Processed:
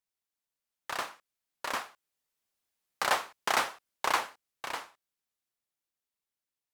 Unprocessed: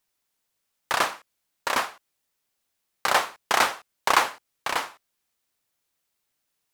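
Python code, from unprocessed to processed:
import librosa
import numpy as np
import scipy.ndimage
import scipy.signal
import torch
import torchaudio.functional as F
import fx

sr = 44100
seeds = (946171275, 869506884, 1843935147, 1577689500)

y = fx.doppler_pass(x, sr, speed_mps=6, closest_m=7.8, pass_at_s=3.05)
y = F.gain(torch.from_numpy(y), -6.0).numpy()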